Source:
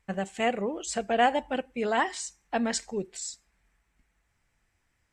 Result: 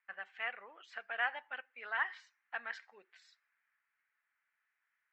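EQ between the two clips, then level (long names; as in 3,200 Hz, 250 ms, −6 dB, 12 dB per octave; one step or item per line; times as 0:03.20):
four-pole ladder band-pass 1,800 Hz, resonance 45%
high-frequency loss of the air 200 metres
+5.0 dB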